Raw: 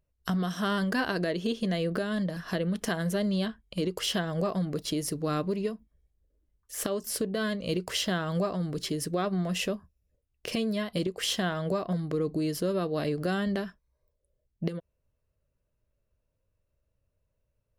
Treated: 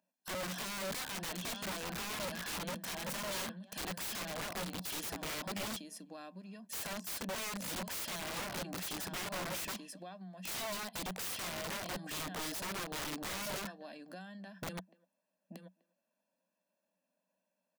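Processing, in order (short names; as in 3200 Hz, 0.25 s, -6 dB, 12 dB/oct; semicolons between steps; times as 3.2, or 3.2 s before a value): rippled Chebyshev high-pass 180 Hz, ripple 3 dB; comb 1.2 ms, depth 76%; speakerphone echo 0.25 s, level -28 dB; compressor 10:1, threshold -36 dBFS, peak gain reduction 13.5 dB; dynamic EQ 3100 Hz, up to +5 dB, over -57 dBFS, Q 0.86; on a send: echo 0.882 s -11 dB; on the sum: wrapped overs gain 36 dB; gain +1 dB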